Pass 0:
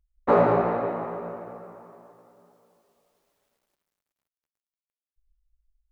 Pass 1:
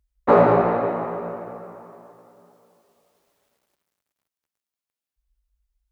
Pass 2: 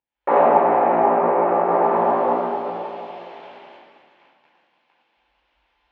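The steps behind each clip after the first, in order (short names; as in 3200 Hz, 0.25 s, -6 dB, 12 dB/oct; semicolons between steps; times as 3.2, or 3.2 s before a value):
HPF 42 Hz; gain +4.5 dB
recorder AGC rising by 76 dB/s; speaker cabinet 430–2900 Hz, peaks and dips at 440 Hz -6 dB, 850 Hz +5 dB, 1300 Hz -8 dB, 1900 Hz -4 dB; shoebox room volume 800 m³, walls mixed, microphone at 4.3 m; gain -6.5 dB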